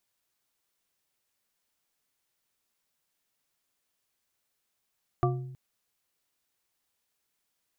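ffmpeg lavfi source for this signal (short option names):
-f lavfi -i "aevalsrc='0.0708*pow(10,-3*t/0.97)*sin(2*PI*131*t)+0.0631*pow(10,-3*t/0.477)*sin(2*PI*361.2*t)+0.0562*pow(10,-3*t/0.298)*sin(2*PI*707.9*t)+0.0501*pow(10,-3*t/0.209)*sin(2*PI*1170.2*t)':d=0.32:s=44100"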